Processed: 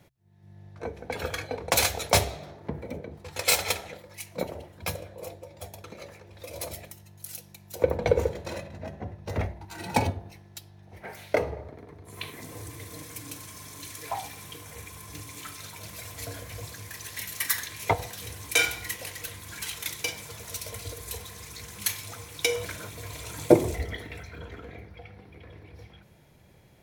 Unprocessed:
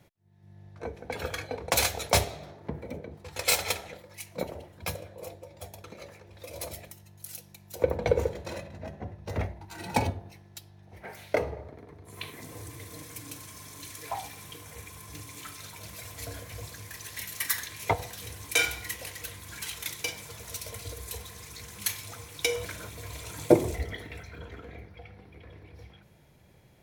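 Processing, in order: de-hum 65.23 Hz, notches 2; trim +2 dB

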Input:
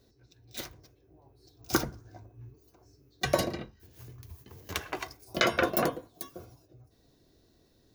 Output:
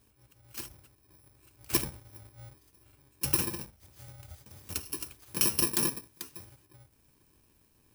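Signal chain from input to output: bit-reversed sample order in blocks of 64 samples; trim -1 dB

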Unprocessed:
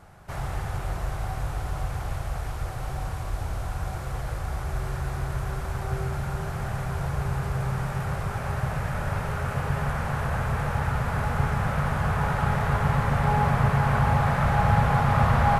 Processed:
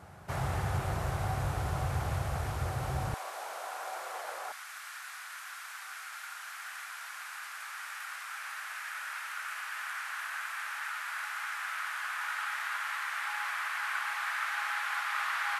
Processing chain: high-pass 66 Hz 24 dB/octave, from 3.14 s 540 Hz, from 4.52 s 1.4 kHz

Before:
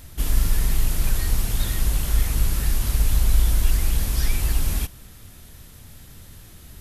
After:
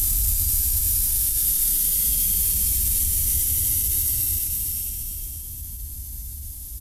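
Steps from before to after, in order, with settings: de-hum 51.84 Hz, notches 17; Paulstretch 49×, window 0.05 s, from 4.77 s; tone controls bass +10 dB, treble +12 dB; formant-preserving pitch shift +2.5 st; in parallel at -7 dB: saturation -13.5 dBFS, distortion -11 dB; on the sum: pre-emphasis filter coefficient 0.8; on a send: delay 461 ms -10 dB; on the sum: trim -3 dB

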